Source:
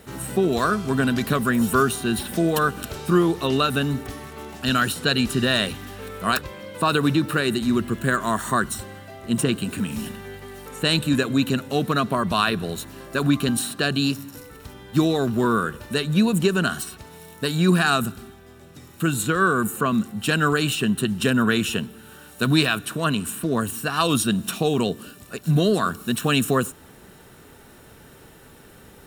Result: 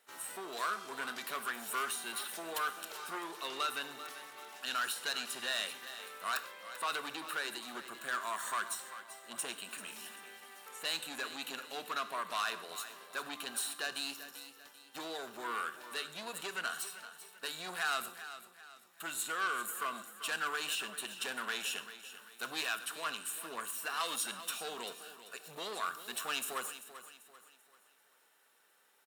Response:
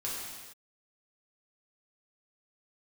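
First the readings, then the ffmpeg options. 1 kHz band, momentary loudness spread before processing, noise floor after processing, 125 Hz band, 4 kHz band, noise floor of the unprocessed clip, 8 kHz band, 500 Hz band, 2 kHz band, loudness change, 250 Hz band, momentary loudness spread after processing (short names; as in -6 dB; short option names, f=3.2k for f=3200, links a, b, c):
-13.0 dB, 12 LU, -67 dBFS, under -40 dB, -12.0 dB, -48 dBFS, -9.5 dB, -22.0 dB, -12.0 dB, -16.0 dB, -31.0 dB, 13 LU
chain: -filter_complex "[0:a]asoftclip=type=tanh:threshold=-18.5dB,highpass=830,agate=range=-9dB:threshold=-46dB:ratio=16:detection=peak,aecho=1:1:390|780|1170|1560:0.224|0.0873|0.0341|0.0133,asplit=2[a][b];[1:a]atrim=start_sample=2205,afade=t=out:st=0.17:d=0.01,atrim=end_sample=7938,adelay=25[c];[b][c]afir=irnorm=-1:irlink=0,volume=-15dB[d];[a][d]amix=inputs=2:normalize=0,volume=-8.5dB"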